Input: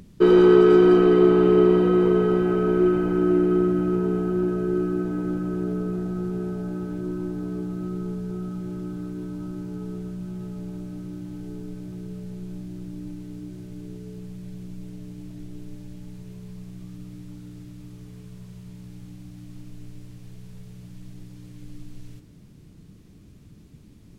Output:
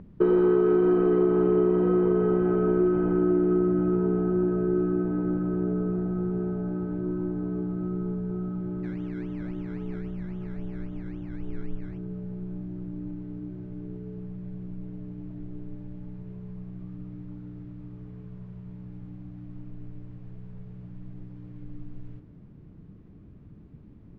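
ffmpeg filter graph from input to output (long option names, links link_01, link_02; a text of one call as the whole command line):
ffmpeg -i in.wav -filter_complex "[0:a]asettb=1/sr,asplit=3[link_01][link_02][link_03];[link_01]atrim=end=8.834[link_04];[link_02]atrim=start=8.83:end=11.98,asetpts=PTS-STARTPTS,afade=type=in:duration=0.004:curve=qsin,afade=type=out:start_time=3.146:duration=0.004:curve=qsin,asubboost=boost=5:cutoff=72,acrusher=samples=19:mix=1:aa=0.000001:lfo=1:lforange=11.4:lforate=3.7[link_05];[link_03]atrim=start=11.976[link_06];[link_04][link_05]acrossfade=duration=0.004:curve1=hsin:curve2=qsin[link_07];[link_07][link_06]acrossfade=duration=0.004:curve1=qsin:curve2=hsin,lowpass=1400,acompressor=threshold=-19dB:ratio=4" out.wav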